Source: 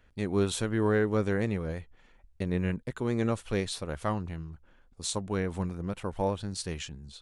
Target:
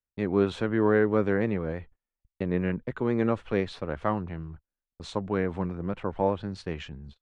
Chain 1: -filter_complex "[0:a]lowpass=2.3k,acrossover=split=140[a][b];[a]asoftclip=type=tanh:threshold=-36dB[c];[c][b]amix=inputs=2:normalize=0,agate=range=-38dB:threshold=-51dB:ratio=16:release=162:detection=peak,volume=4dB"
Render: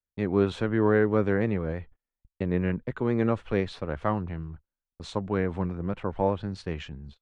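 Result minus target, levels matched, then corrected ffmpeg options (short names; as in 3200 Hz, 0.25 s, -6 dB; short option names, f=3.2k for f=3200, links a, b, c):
soft clip: distortion -7 dB
-filter_complex "[0:a]lowpass=2.3k,acrossover=split=140[a][b];[a]asoftclip=type=tanh:threshold=-44dB[c];[c][b]amix=inputs=2:normalize=0,agate=range=-38dB:threshold=-51dB:ratio=16:release=162:detection=peak,volume=4dB"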